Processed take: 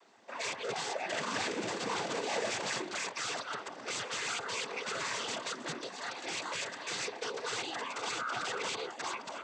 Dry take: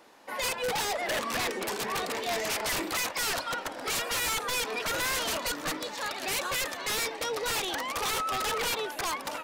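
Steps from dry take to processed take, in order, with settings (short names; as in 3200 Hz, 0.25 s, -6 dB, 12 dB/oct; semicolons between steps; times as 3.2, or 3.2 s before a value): 1.16–2.77 half-waves squared off; noise vocoder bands 16; gain -5.5 dB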